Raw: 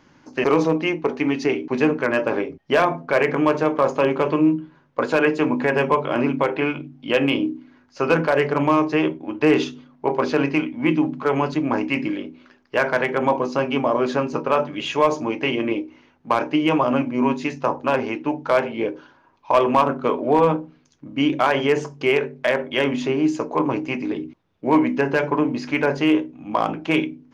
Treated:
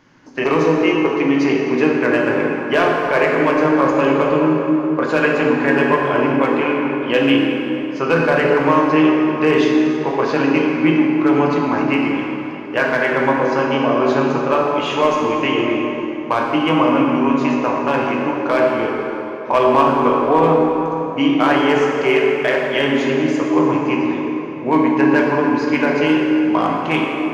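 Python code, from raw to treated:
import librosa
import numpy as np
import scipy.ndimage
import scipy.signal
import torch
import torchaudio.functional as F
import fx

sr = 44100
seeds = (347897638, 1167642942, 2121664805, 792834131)

y = fx.peak_eq(x, sr, hz=1800.0, db=2.5, octaves=0.77)
y = fx.rev_plate(y, sr, seeds[0], rt60_s=3.6, hf_ratio=0.6, predelay_ms=0, drr_db=-1.5)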